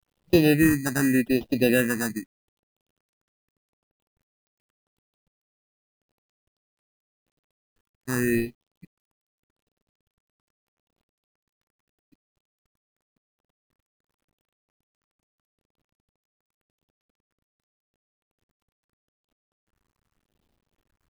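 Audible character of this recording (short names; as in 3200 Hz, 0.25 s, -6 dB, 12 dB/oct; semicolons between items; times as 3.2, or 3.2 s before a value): aliases and images of a low sample rate 2200 Hz, jitter 0%; phasing stages 4, 0.84 Hz, lowest notch 500–1500 Hz; a quantiser's noise floor 12-bit, dither none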